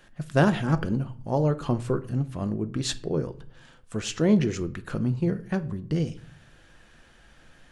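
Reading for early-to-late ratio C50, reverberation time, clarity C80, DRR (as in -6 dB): 17.5 dB, 0.50 s, 22.0 dB, 10.0 dB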